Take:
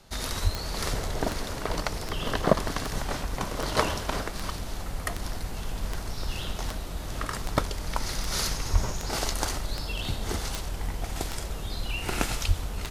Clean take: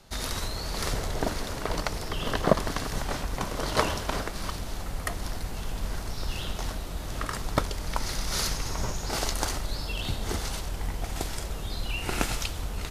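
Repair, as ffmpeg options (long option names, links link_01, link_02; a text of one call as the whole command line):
ffmpeg -i in.wav -filter_complex "[0:a]adeclick=threshold=4,asplit=3[link_01][link_02][link_03];[link_01]afade=type=out:start_time=0.43:duration=0.02[link_04];[link_02]highpass=frequency=140:width=0.5412,highpass=frequency=140:width=1.3066,afade=type=in:start_time=0.43:duration=0.02,afade=type=out:start_time=0.55:duration=0.02[link_05];[link_03]afade=type=in:start_time=0.55:duration=0.02[link_06];[link_04][link_05][link_06]amix=inputs=3:normalize=0,asplit=3[link_07][link_08][link_09];[link_07]afade=type=out:start_time=8.72:duration=0.02[link_10];[link_08]highpass=frequency=140:width=0.5412,highpass=frequency=140:width=1.3066,afade=type=in:start_time=8.72:duration=0.02,afade=type=out:start_time=8.84:duration=0.02[link_11];[link_09]afade=type=in:start_time=8.84:duration=0.02[link_12];[link_10][link_11][link_12]amix=inputs=3:normalize=0,asplit=3[link_13][link_14][link_15];[link_13]afade=type=out:start_time=12.47:duration=0.02[link_16];[link_14]highpass=frequency=140:width=0.5412,highpass=frequency=140:width=1.3066,afade=type=in:start_time=12.47:duration=0.02,afade=type=out:start_time=12.59:duration=0.02[link_17];[link_15]afade=type=in:start_time=12.59:duration=0.02[link_18];[link_16][link_17][link_18]amix=inputs=3:normalize=0" out.wav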